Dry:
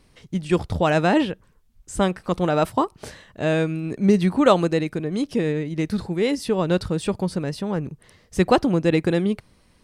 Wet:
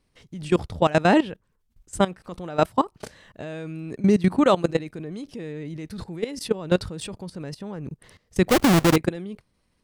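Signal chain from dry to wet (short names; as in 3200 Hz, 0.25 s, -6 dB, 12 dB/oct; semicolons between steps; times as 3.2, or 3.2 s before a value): 8.49–8.96 half-waves squared off; level quantiser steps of 18 dB; gain +2.5 dB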